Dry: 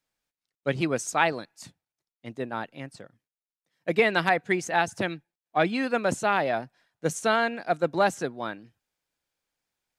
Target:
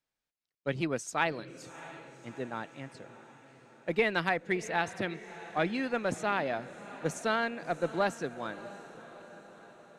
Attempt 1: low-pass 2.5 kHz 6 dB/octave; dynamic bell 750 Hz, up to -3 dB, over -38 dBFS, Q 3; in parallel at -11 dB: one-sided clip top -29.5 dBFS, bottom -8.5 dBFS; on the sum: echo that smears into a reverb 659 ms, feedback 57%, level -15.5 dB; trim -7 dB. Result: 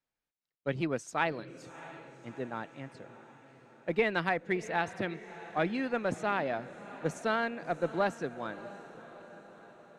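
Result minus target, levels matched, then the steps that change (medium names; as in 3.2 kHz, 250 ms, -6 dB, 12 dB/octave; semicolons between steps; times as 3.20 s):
8 kHz band -5.5 dB
change: low-pass 6.5 kHz 6 dB/octave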